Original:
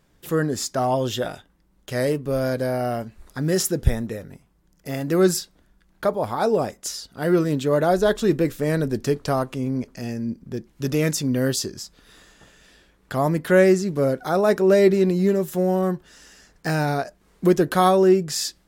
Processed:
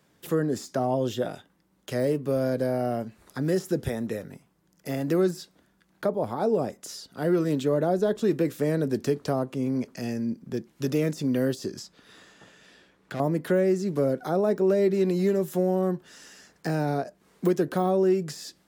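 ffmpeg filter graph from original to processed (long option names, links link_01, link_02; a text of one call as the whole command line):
ffmpeg -i in.wav -filter_complex "[0:a]asettb=1/sr,asplit=3[link_01][link_02][link_03];[link_01]atrim=end=11.794[link_04];[link_02]atrim=start=11.79:end=13.2,asetpts=PTS-STARTPTS,afade=type=in:duration=0.004:curve=qsin,afade=type=out:start_time=1.406:duration=0.004:curve=qsin,highshelf=frequency=8800:gain=-11.5,asoftclip=type=hard:threshold=-27.5dB[link_05];[link_03]atrim=start=13.196[link_06];[link_04][link_05]acrossfade=duration=0.004:curve1=hsin:curve2=qsin[link_07];[link_07][link_06]acrossfade=duration=0.004:curve1=qsin:curve2=hsin,deesser=0.6,highpass=130,acrossover=split=260|650[link_08][link_09][link_10];[link_08]acompressor=threshold=-29dB:ratio=4[link_11];[link_09]acompressor=threshold=-23dB:ratio=4[link_12];[link_10]acompressor=threshold=-38dB:ratio=4[link_13];[link_11][link_12][link_13]amix=inputs=3:normalize=0" out.wav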